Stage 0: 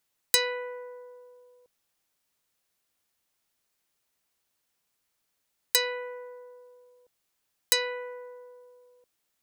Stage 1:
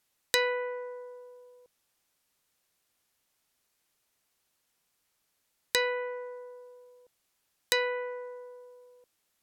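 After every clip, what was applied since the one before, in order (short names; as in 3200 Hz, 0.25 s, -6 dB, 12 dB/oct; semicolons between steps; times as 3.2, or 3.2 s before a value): treble ducked by the level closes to 2500 Hz, closed at -27 dBFS; gain +2.5 dB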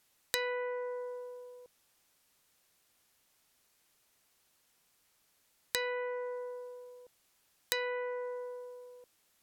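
compressor 2.5:1, threshold -41 dBFS, peak gain reduction 13 dB; gain +4.5 dB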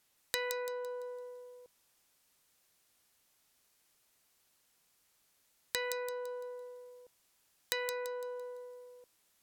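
thin delay 0.169 s, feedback 39%, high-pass 4300 Hz, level -3.5 dB; gain -2 dB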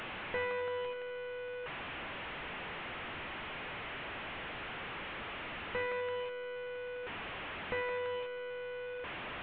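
delta modulation 16 kbps, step -37 dBFS; gain +1.5 dB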